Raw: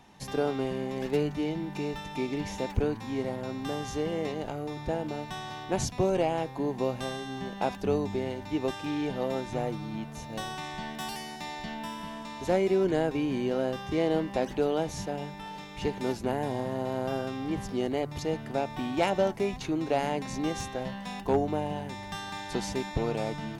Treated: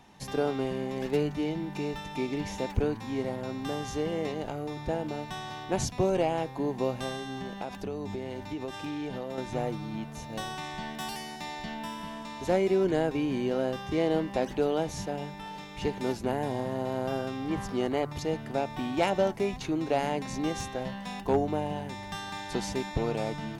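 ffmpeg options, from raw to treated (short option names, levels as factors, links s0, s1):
-filter_complex "[0:a]asettb=1/sr,asplit=3[s0][s1][s2];[s0]atrim=end=7.244[s3];[s1]atrim=start=7.24:end=9.38,asetpts=PTS-STARTPTS,afade=t=in:d=0.004:c=qsin,afade=t=out:st=2.136:d=0.004:c=qsin,acompressor=threshold=0.0282:ratio=6:attack=3.2:release=140:knee=1:detection=peak[s4];[s2]atrim=start=9.376[s5];[s3][s4]acrossfade=d=0.004:c1=hsin:c2=qsin[s6];[s6][s5]acrossfade=d=0.004:c1=qsin:c2=hsin,asettb=1/sr,asplit=3[s7][s8][s9];[s7]atrim=end=17.504[s10];[s8]atrim=start=17.5:end=18.13,asetpts=PTS-STARTPTS,afade=t=in:d=0.004:c=qsin,afade=t=out:st=0.626:d=0.004:c=qsin,equalizer=f=1200:w=1.3:g=7[s11];[s9]atrim=start=18.126[s12];[s10][s11]acrossfade=d=0.004:c1=hsin:c2=qsin[s13];[s13][s12]acrossfade=d=0.004:c1=qsin:c2=hsin"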